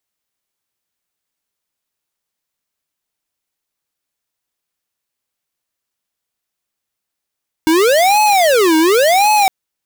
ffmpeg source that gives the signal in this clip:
ffmpeg -f lavfi -i "aevalsrc='0.282*(2*lt(mod((583.5*t-268.5/(2*PI*0.91)*sin(2*PI*0.91*t)),1),0.5)-1)':duration=1.81:sample_rate=44100" out.wav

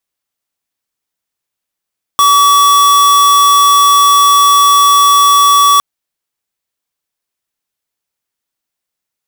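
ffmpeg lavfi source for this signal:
ffmpeg -f lavfi -i "aevalsrc='0.447*(2*lt(mod(1140*t,1),0.5)-1)':duration=3.61:sample_rate=44100" out.wav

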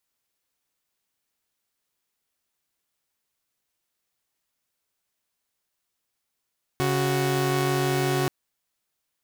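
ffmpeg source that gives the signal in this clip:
ffmpeg -f lavfi -i "aevalsrc='0.0794*((2*mod(138.59*t,1)-1)+(2*mod(369.99*t,1)-1))':duration=1.48:sample_rate=44100" out.wav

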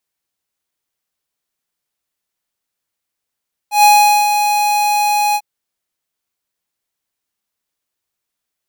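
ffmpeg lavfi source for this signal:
ffmpeg -f lavfi -i "aevalsrc='0.447*(2*lt(mod(832*t,1),0.5)-1)':duration=1.697:sample_rate=44100,afade=type=in:duration=0.126,afade=type=out:start_time=0.126:duration=0.43:silence=0.422,afade=type=out:start_time=1.64:duration=0.057" out.wav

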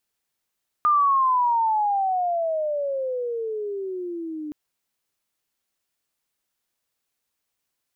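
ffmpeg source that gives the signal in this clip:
ffmpeg -f lavfi -i "aevalsrc='pow(10,(-15-14.5*t/3.67)/20)*sin(2*PI*1220*3.67/(-24.5*log(2)/12)*(exp(-24.5*log(2)/12*t/3.67)-1))':duration=3.67:sample_rate=44100" out.wav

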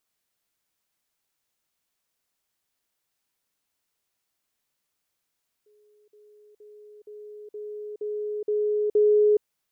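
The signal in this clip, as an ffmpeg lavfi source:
ffmpeg -f lavfi -i "aevalsrc='pow(10,(-57.5+6*floor(t/0.47))/20)*sin(2*PI*420*t)*clip(min(mod(t,0.47),0.42-mod(t,0.47))/0.005,0,1)':duration=3.76:sample_rate=44100" out.wav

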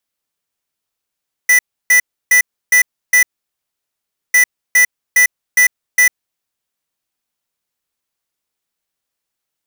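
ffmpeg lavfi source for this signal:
ffmpeg -f lavfi -i "aevalsrc='0.355*(2*lt(mod(1980*t,1),0.5)-1)*clip(min(mod(mod(t,2.85),0.41),0.1-mod(mod(t,2.85),0.41))/0.005,0,1)*lt(mod(t,2.85),2.05)':duration=5.7:sample_rate=44100" out.wav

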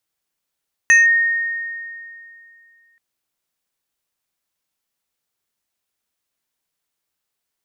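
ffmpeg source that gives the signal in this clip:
ffmpeg -f lavfi -i "aevalsrc='0.473*pow(10,-3*t/2.52)*sin(2*PI*1850*t+0.51*clip(1-t/0.17,0,1)*sin(2*PI*2.39*1850*t))':duration=2.08:sample_rate=44100" out.wav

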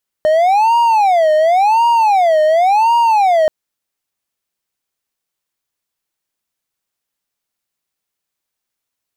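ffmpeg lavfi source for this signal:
ffmpeg -f lavfi -i "aevalsrc='0.473*(1-4*abs(mod((778.5*t-163.5/(2*PI*0.92)*sin(2*PI*0.92*t))+0.25,1)-0.5))':duration=3.23:sample_rate=44100" out.wav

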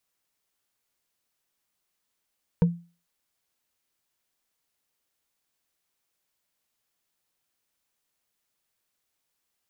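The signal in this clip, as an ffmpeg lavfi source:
ffmpeg -f lavfi -i "aevalsrc='0.224*pow(10,-3*t/0.34)*sin(2*PI*171*t)+0.0841*pow(10,-3*t/0.101)*sin(2*PI*471.4*t)+0.0316*pow(10,-3*t/0.045)*sin(2*PI*924.1*t)+0.0119*pow(10,-3*t/0.025)*sin(2*PI*1527.5*t)+0.00447*pow(10,-3*t/0.015)*sin(2*PI*2281.1*t)':duration=0.45:sample_rate=44100" out.wav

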